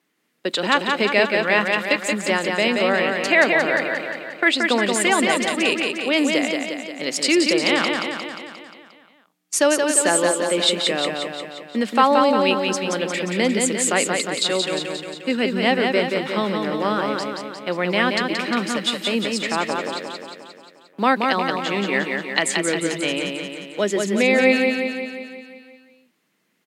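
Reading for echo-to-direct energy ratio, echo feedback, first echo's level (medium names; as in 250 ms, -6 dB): -2.0 dB, 59%, -4.0 dB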